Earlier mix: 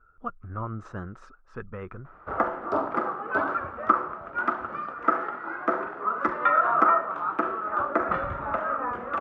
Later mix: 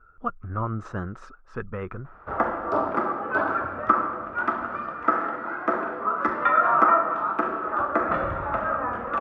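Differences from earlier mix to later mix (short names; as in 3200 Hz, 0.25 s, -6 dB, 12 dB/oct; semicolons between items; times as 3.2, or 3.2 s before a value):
speech +5.0 dB; reverb: on, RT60 1.5 s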